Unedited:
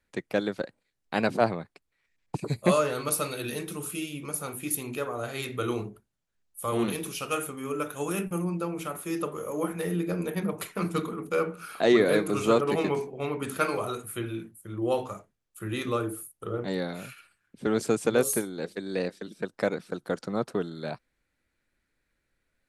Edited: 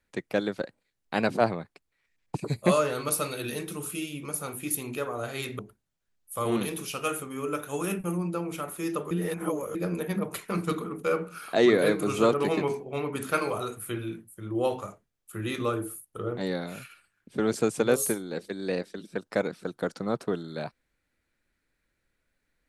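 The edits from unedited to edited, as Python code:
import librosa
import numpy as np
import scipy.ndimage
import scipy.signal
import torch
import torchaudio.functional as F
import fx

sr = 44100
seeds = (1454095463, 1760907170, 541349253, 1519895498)

y = fx.edit(x, sr, fx.cut(start_s=5.59, length_s=0.27),
    fx.reverse_span(start_s=9.38, length_s=0.64), tone=tone)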